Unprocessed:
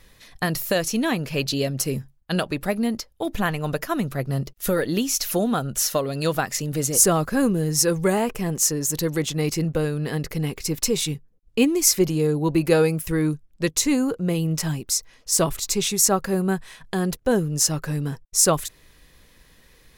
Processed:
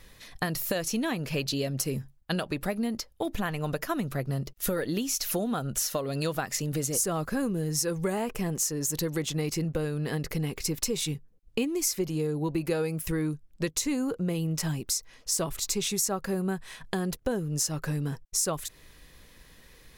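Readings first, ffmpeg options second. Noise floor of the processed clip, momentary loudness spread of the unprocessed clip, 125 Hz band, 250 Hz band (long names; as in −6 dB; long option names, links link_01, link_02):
−56 dBFS, 9 LU, −6.0 dB, −7.0 dB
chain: -af "acompressor=threshold=-27dB:ratio=4"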